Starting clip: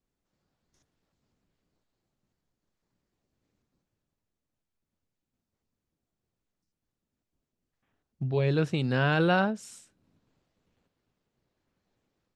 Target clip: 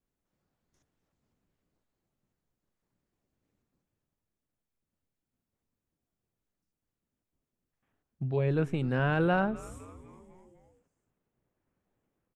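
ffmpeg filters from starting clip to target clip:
-filter_complex "[0:a]asetnsamples=n=441:p=0,asendcmd='8.36 equalizer g -14.5',equalizer=f=4.5k:t=o:w=1.1:g=-5.5,asplit=6[a][b][c][d][e][f];[b]adelay=252,afreqshift=-140,volume=-19dB[g];[c]adelay=504,afreqshift=-280,volume=-23.3dB[h];[d]adelay=756,afreqshift=-420,volume=-27.6dB[i];[e]adelay=1008,afreqshift=-560,volume=-31.9dB[j];[f]adelay=1260,afreqshift=-700,volume=-36.2dB[k];[a][g][h][i][j][k]amix=inputs=6:normalize=0,volume=-2dB"

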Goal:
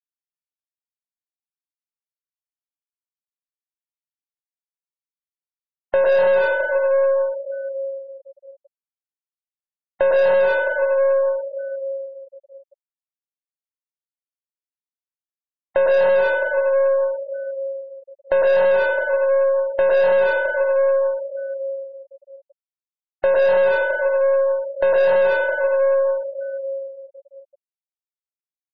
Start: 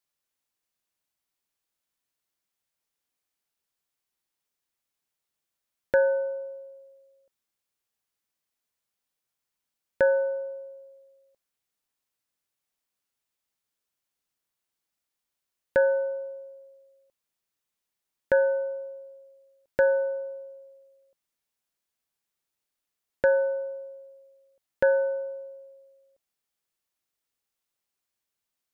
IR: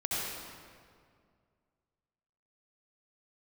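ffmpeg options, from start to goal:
-filter_complex "[0:a]highpass=f=330:w=0.5412,highpass=f=330:w=1.3066,equalizer=f=430:t=q:w=4:g=-6,equalizer=f=610:t=q:w=4:g=4,equalizer=f=1.1k:t=q:w=4:g=4,lowpass=f=2k:w=0.5412,lowpass=f=2k:w=1.3066[a];[1:a]atrim=start_sample=2205,asetrate=26901,aresample=44100[b];[a][b]afir=irnorm=-1:irlink=0,aeval=exprs='(tanh(14.1*val(0)+0.35)-tanh(0.35))/14.1':c=same,afftfilt=real='re*gte(hypot(re,im),0.02)':imag='im*gte(hypot(re,im),0.02)':win_size=1024:overlap=0.75,asplit=2[c][d];[d]acompressor=threshold=-36dB:ratio=6,volume=1dB[e];[c][e]amix=inputs=2:normalize=0,equalizer=f=750:w=0.87:g=12,volume=-1.5dB"

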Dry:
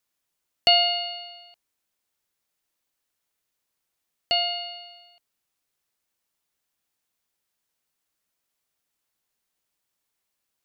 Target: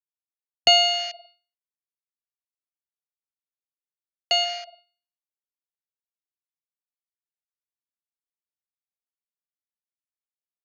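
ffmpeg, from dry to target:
-filter_complex "[0:a]asettb=1/sr,asplit=3[a][b][c];[a]atrim=end=4.444[d];[b]atrim=start=4.44:end=4.87,asetpts=PTS-STARTPTS,afade=t=in:d=0.004:c=qsin,afade=t=out:st=0.426:d=0.004:c=qsin,aemphasis=mode=reproduction:type=50kf[e];[c]atrim=start=4.866[f];[d][e]acrossfade=d=0.004:c1=hsin:c2=qsin[g];[g][f]acrossfade=d=0.004:c1=qsin:c2=hsin,afwtdn=0.02,agate=range=-33dB:threshold=-50dB:ratio=3:detection=peak,acrossover=split=300|540|1700[h][i][j][k];[i]aeval=exprs='sgn(val(0))*max(abs(val(0))-0.00158,0)':c=same[l];[h][l][j][k]amix=inputs=4:normalize=0,volume=2dB"

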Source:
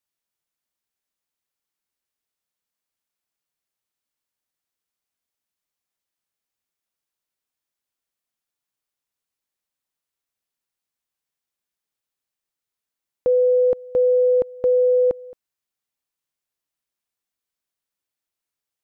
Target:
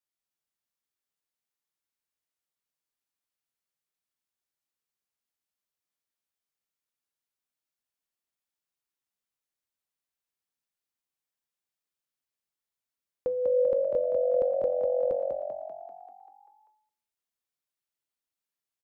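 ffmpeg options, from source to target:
-filter_complex "[0:a]bandreject=f=99.63:t=h:w=4,bandreject=f=199.26:t=h:w=4,bandreject=f=298.89:t=h:w=4,bandreject=f=398.52:t=h:w=4,bandreject=f=498.15:t=h:w=4,bandreject=f=597.78:t=h:w=4,bandreject=f=697.41:t=h:w=4,bandreject=f=797.04:t=h:w=4,bandreject=f=896.67:t=h:w=4,bandreject=f=996.3:t=h:w=4,bandreject=f=1.09593k:t=h:w=4,flanger=delay=7.6:depth=2.7:regen=78:speed=0.25:shape=sinusoidal,asplit=9[a][b][c][d][e][f][g][h][i];[b]adelay=195,afreqshift=45,volume=-4dB[j];[c]adelay=390,afreqshift=90,volume=-8.6dB[k];[d]adelay=585,afreqshift=135,volume=-13.2dB[l];[e]adelay=780,afreqshift=180,volume=-17.7dB[m];[f]adelay=975,afreqshift=225,volume=-22.3dB[n];[g]adelay=1170,afreqshift=270,volume=-26.9dB[o];[h]adelay=1365,afreqshift=315,volume=-31.5dB[p];[i]adelay=1560,afreqshift=360,volume=-36.1dB[q];[a][j][k][l][m][n][o][p][q]amix=inputs=9:normalize=0,volume=-3dB"

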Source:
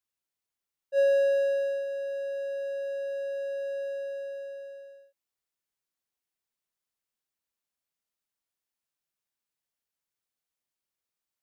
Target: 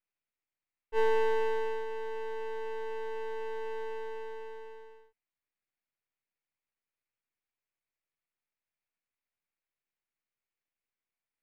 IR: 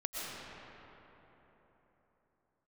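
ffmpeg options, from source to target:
-af "afreqshift=-110,highshelf=f=3.3k:t=q:w=3:g=-12,aeval=exprs='max(val(0),0)':c=same"

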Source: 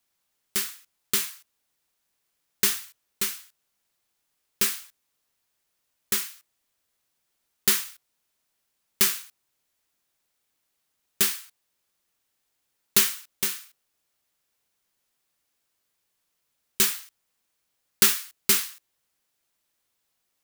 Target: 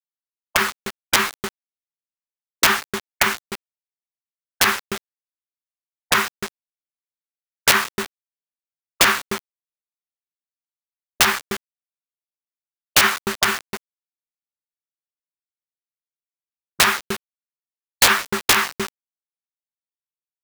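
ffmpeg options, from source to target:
-af "lowpass=1.1k,equalizer=f=110:w=6.6:g=7.5,aresample=16000,volume=21.5dB,asoftclip=hard,volume=-21.5dB,aresample=44100,aecho=1:1:304:0.106,aeval=exprs='(mod(26.6*val(0)+1,2)-1)/26.6':c=same,acrusher=bits=8:mix=0:aa=0.000001,afftfilt=real='re*lt(hypot(re,im),0.0447)':imag='im*lt(hypot(re,im),0.0447)':win_size=1024:overlap=0.75,lowshelf=f=360:g=-6,alimiter=level_in=30.5dB:limit=-1dB:release=50:level=0:latency=1,volume=-1dB"

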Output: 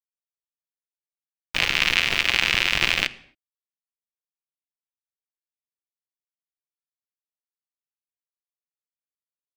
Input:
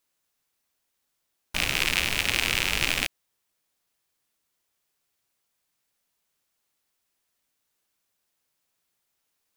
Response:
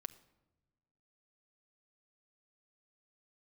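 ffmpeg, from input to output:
-filter_complex "[0:a]aeval=exprs='val(0)*gte(abs(val(0)),0.0447)':c=same,asplit=2[a][b];[1:a]atrim=start_sample=2205,afade=t=out:st=0.33:d=0.01,atrim=end_sample=14994,lowpass=5.5k[c];[b][c]afir=irnorm=-1:irlink=0,volume=13dB[d];[a][d]amix=inputs=2:normalize=0,volume=-6dB"

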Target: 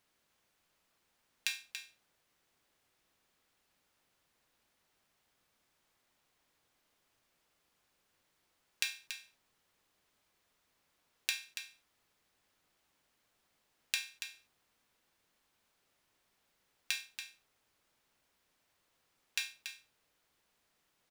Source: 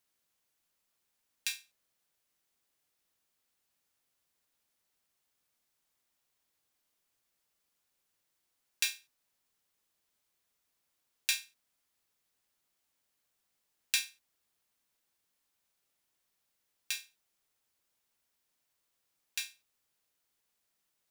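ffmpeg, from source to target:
-filter_complex "[0:a]highshelf=f=5.1k:g=-11.5,acompressor=threshold=-40dB:ratio=10,asplit=2[a][b];[b]aecho=0:1:283:0.355[c];[a][c]amix=inputs=2:normalize=0,volume=9dB"

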